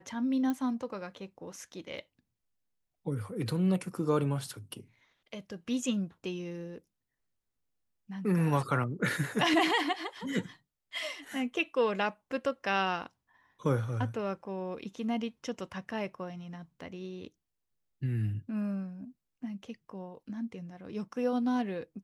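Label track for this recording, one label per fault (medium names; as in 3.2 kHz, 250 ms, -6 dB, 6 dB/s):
0.500000	0.500000	pop -21 dBFS
1.980000	1.980000	dropout 2.8 ms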